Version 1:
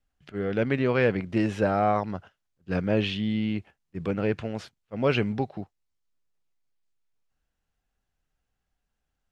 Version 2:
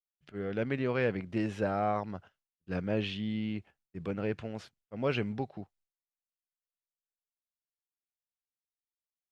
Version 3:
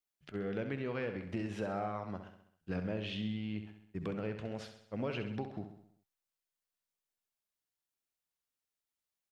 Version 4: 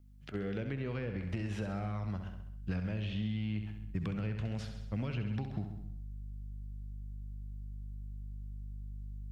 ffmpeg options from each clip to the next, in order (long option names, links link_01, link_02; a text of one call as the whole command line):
ffmpeg -i in.wav -af "agate=range=-33dB:threshold=-56dB:ratio=3:detection=peak,volume=-7dB" out.wav
ffmpeg -i in.wav -filter_complex "[0:a]acompressor=threshold=-38dB:ratio=6,asplit=2[link_01][link_02];[link_02]aecho=0:1:66|132|198|264|330|396:0.355|0.192|0.103|0.0559|0.0302|0.0163[link_03];[link_01][link_03]amix=inputs=2:normalize=0,volume=3dB" out.wav
ffmpeg -i in.wav -filter_complex "[0:a]aeval=exprs='val(0)+0.000794*(sin(2*PI*50*n/s)+sin(2*PI*2*50*n/s)/2+sin(2*PI*3*50*n/s)/3+sin(2*PI*4*50*n/s)/4+sin(2*PI*5*50*n/s)/5)':channel_layout=same,asubboost=boost=7.5:cutoff=160,acrossover=split=450|1800[link_01][link_02][link_03];[link_01]acompressor=threshold=-40dB:ratio=4[link_04];[link_02]acompressor=threshold=-53dB:ratio=4[link_05];[link_03]acompressor=threshold=-55dB:ratio=4[link_06];[link_04][link_05][link_06]amix=inputs=3:normalize=0,volume=5dB" out.wav